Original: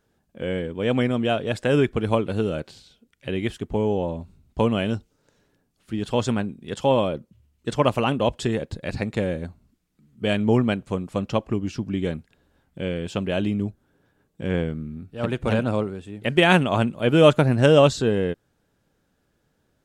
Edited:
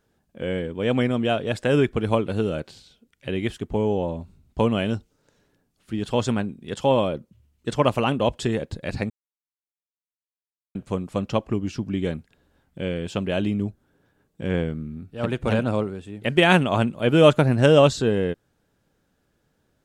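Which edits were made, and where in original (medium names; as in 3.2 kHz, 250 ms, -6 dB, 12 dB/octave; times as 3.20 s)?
9.10–10.75 s: mute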